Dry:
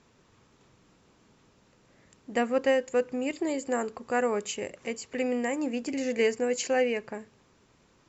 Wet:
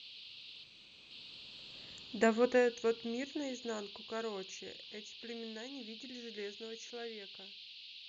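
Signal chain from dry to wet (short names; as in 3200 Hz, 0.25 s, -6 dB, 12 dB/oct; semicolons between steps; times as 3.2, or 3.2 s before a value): Doppler pass-by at 1.9, 31 m/s, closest 14 m; band noise 2600–4500 Hz -52 dBFS; spectral gain 0.63–1.11, 2600–5700 Hz -7 dB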